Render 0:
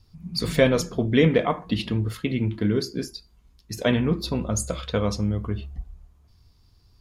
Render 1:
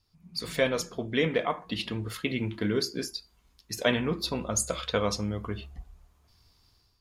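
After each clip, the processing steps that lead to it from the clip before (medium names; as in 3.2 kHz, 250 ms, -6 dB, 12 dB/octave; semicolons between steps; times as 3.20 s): level rider gain up to 10 dB; bass shelf 340 Hz -11.5 dB; trim -7 dB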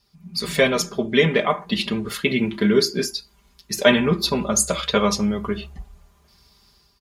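high-pass 47 Hz; comb 5 ms, depth 77%; trim +7.5 dB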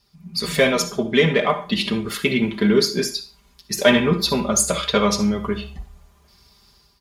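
in parallel at -9 dB: saturation -16.5 dBFS, distortion -10 dB; on the sum: reverberation RT60 0.35 s, pre-delay 45 ms, DRR 11 dB; trim -1 dB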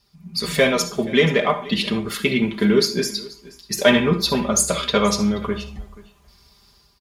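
delay 480 ms -21 dB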